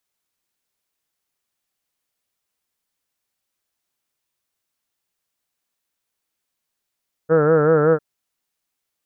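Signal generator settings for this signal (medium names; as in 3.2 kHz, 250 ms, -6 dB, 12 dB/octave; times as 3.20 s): formant-synthesis vowel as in heard, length 0.70 s, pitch 155 Hz, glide 0 st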